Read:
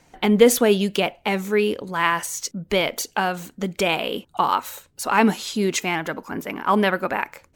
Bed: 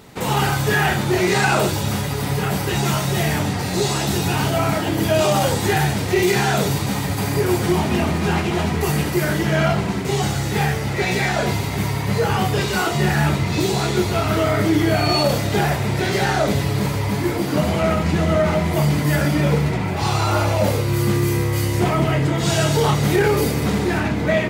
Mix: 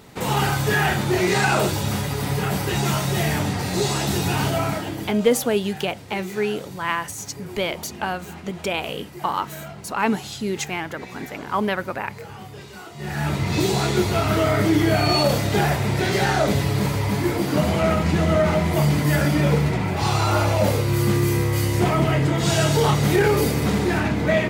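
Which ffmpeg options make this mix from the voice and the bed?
-filter_complex "[0:a]adelay=4850,volume=0.631[s0];[1:a]volume=6.31,afade=t=out:st=4.48:d=0.72:silence=0.141254,afade=t=in:st=12.96:d=0.59:silence=0.125893[s1];[s0][s1]amix=inputs=2:normalize=0"

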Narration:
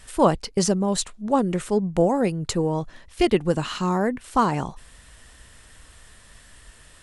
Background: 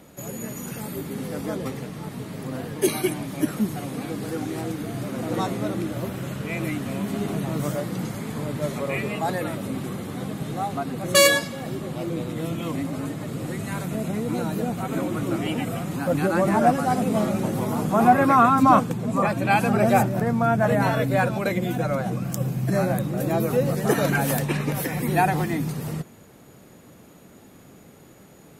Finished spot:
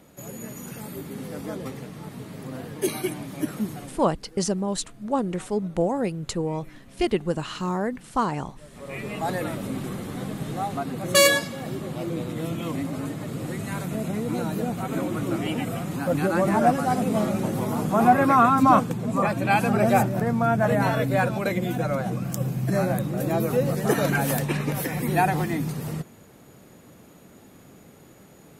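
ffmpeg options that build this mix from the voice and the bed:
-filter_complex "[0:a]adelay=3800,volume=0.631[s0];[1:a]volume=6.68,afade=t=out:st=3.7:d=0.38:silence=0.133352,afade=t=in:st=8.7:d=0.63:silence=0.0944061[s1];[s0][s1]amix=inputs=2:normalize=0"

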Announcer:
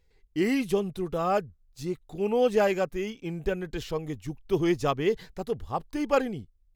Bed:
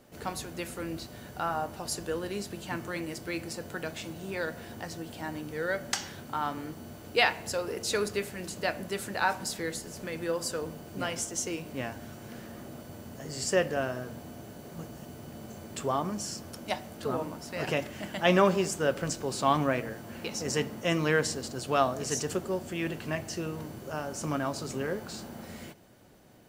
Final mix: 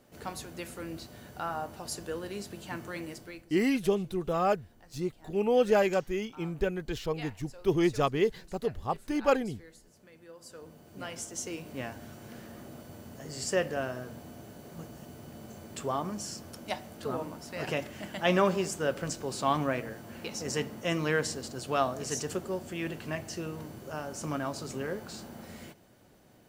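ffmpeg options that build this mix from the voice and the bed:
-filter_complex "[0:a]adelay=3150,volume=0.891[s0];[1:a]volume=4.73,afade=t=out:st=3.07:d=0.39:silence=0.158489,afade=t=in:st=10.36:d=1.37:silence=0.141254[s1];[s0][s1]amix=inputs=2:normalize=0"

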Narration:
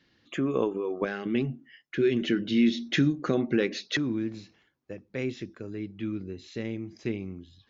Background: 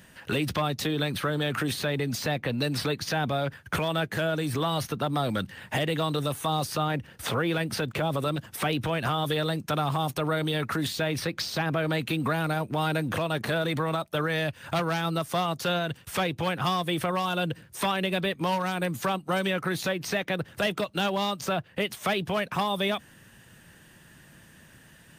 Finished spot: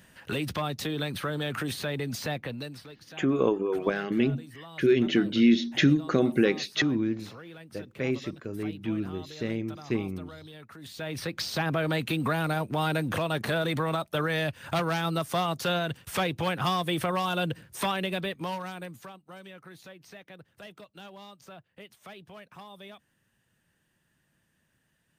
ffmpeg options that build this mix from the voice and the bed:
-filter_complex "[0:a]adelay=2850,volume=1.33[s0];[1:a]volume=5.62,afade=t=out:st=2.31:d=0.51:silence=0.16788,afade=t=in:st=10.8:d=0.69:silence=0.11885,afade=t=out:st=17.67:d=1.46:silence=0.112202[s1];[s0][s1]amix=inputs=2:normalize=0"

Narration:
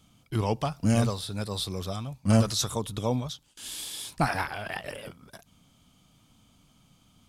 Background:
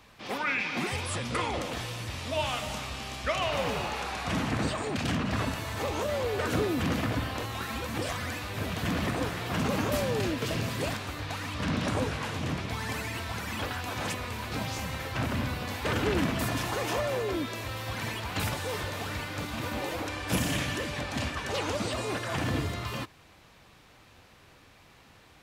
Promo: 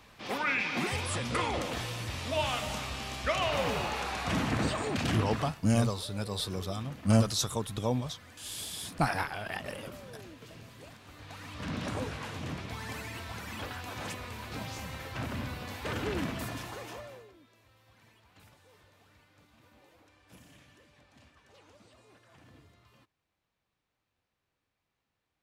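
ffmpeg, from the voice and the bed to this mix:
-filter_complex "[0:a]adelay=4800,volume=0.75[s0];[1:a]volume=4.22,afade=t=out:st=5.07:d=0.53:silence=0.11885,afade=t=in:st=10.97:d=0.83:silence=0.223872,afade=t=out:st=16.26:d=1.07:silence=0.0794328[s1];[s0][s1]amix=inputs=2:normalize=0"

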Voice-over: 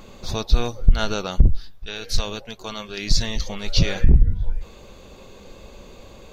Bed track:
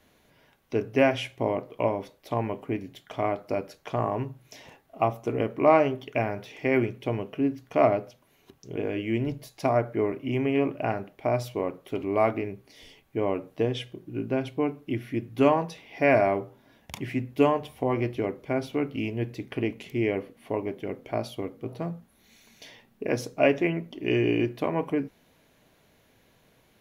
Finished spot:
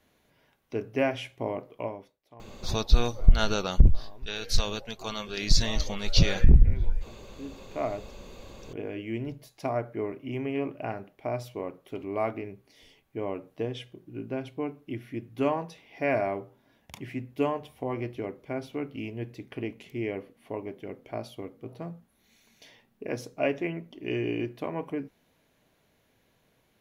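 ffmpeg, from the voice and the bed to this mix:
-filter_complex "[0:a]adelay=2400,volume=0.75[s0];[1:a]volume=4.22,afade=t=out:st=1.65:d=0.55:silence=0.11885,afade=t=in:st=7.19:d=1.14:silence=0.133352[s1];[s0][s1]amix=inputs=2:normalize=0"

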